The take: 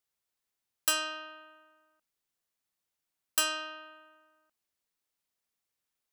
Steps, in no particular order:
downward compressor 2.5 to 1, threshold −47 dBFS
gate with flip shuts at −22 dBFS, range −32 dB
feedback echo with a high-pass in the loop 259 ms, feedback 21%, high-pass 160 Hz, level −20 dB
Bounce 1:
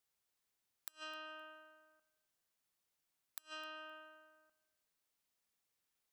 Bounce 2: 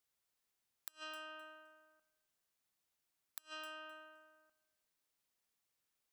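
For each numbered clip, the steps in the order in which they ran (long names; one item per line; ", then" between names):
downward compressor, then gate with flip, then feedback echo with a high-pass in the loop
downward compressor, then feedback echo with a high-pass in the loop, then gate with flip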